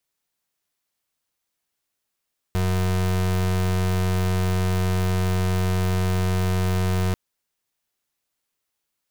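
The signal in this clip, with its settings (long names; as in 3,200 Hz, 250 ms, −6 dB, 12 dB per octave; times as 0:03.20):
pulse wave 92.4 Hz, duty 33% −21.5 dBFS 4.59 s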